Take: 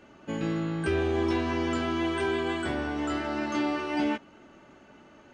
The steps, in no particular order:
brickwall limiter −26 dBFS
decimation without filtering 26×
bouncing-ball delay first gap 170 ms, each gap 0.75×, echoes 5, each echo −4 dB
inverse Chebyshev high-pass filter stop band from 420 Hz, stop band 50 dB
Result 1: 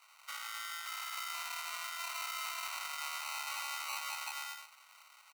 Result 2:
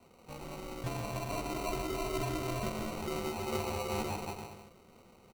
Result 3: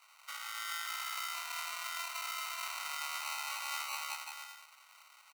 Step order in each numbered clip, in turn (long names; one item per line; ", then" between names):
bouncing-ball delay, then decimation without filtering, then brickwall limiter, then inverse Chebyshev high-pass filter
inverse Chebyshev high-pass filter, then brickwall limiter, then bouncing-ball delay, then decimation without filtering
brickwall limiter, then bouncing-ball delay, then decimation without filtering, then inverse Chebyshev high-pass filter